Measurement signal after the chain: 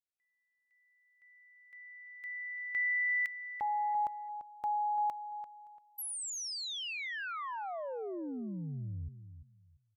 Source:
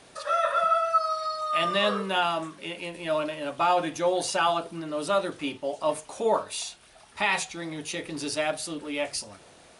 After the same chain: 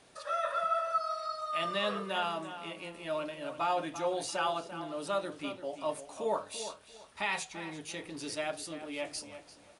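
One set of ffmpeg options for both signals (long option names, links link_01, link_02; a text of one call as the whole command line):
ffmpeg -i in.wav -filter_complex "[0:a]asplit=2[link_01][link_02];[link_02]adelay=342,lowpass=frequency=3500:poles=1,volume=-11dB,asplit=2[link_03][link_04];[link_04]adelay=342,lowpass=frequency=3500:poles=1,volume=0.23,asplit=2[link_05][link_06];[link_06]adelay=342,lowpass=frequency=3500:poles=1,volume=0.23[link_07];[link_01][link_03][link_05][link_07]amix=inputs=4:normalize=0,volume=-8dB" out.wav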